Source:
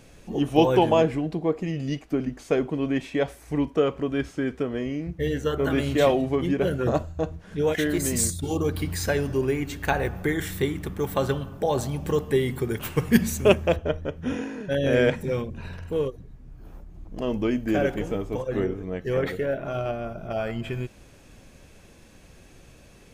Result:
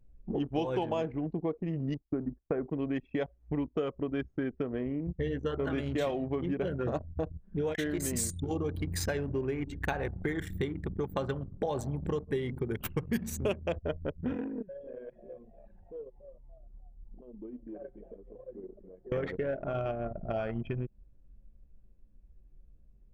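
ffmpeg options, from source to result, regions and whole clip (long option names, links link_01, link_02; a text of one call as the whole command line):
ffmpeg -i in.wav -filter_complex "[0:a]asettb=1/sr,asplit=3[link_01][link_02][link_03];[link_01]atrim=end=1.944[link_04];[link_02]atrim=start=1.94:end=2.67,asetpts=PTS-STARTPTS,afade=type=in:duration=0.004:curve=qsin,afade=type=out:start_time=0.726:duration=0.004:curve=qsin,lowpass=frequency=1800:width=0.5412,lowpass=frequency=1800:width=1.3066,agate=range=-21dB:threshold=-43dB:ratio=16:release=100:detection=peak[link_05];[link_03]atrim=start=2.666[link_06];[link_04][link_05]acrossfade=duration=0.004:curve1=hsin:curve2=qsin[link_07];[link_07][link_06]acrossfade=duration=0.004:curve1=qsin:curve2=hsin,asettb=1/sr,asplit=3[link_08][link_09][link_10];[link_08]atrim=end=14.624[link_11];[link_09]atrim=start=14.62:end=19.12,asetpts=PTS-STARTPTS,afade=type=in:duration=0.004:curve=qsin,afade=type=out:start_time=4.496:duration=0.004:curve=qsin,lowshelf=frequency=240:gain=-7,asplit=6[link_12][link_13][link_14][link_15][link_16][link_17];[link_13]adelay=285,afreqshift=90,volume=-12dB[link_18];[link_14]adelay=570,afreqshift=180,volume=-18.6dB[link_19];[link_15]adelay=855,afreqshift=270,volume=-25.1dB[link_20];[link_16]adelay=1140,afreqshift=360,volume=-31.7dB[link_21];[link_17]adelay=1425,afreqshift=450,volume=-38.2dB[link_22];[link_12][link_18][link_19][link_20][link_21][link_22]amix=inputs=6:normalize=0,atrim=end_sample=198450,acompressor=threshold=-40dB:ratio=3:attack=3.2:release=140:knee=1:detection=peak[link_23];[link_10]atrim=start=19.116[link_24];[link_11][link_23]acrossfade=duration=0.004:curve1=hsin:curve2=qsin[link_25];[link_25][link_24]acrossfade=duration=0.004:curve1=qsin:curve2=hsin,anlmdn=39.8,acompressor=threshold=-33dB:ratio=4,volume=2dB" out.wav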